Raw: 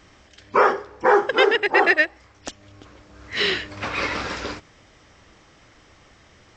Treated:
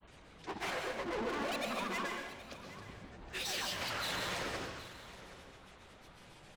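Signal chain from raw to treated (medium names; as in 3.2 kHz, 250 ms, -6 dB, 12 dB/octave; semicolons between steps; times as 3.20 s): treble shelf 4.4 kHz -5.5 dB; hum notches 60/120/180/240/300 Hz; dynamic bell 2.6 kHz, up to +6 dB, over -36 dBFS, Q 1.6; peak limiter -16 dBFS, peak gain reduction 13 dB; saturation -32 dBFS, distortion -6 dB; granulator, grains 22 per s, pitch spread up and down by 12 st; delay 771 ms -15.5 dB; plate-style reverb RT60 0.76 s, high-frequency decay 0.95×, pre-delay 110 ms, DRR 2.5 dB; trim -3.5 dB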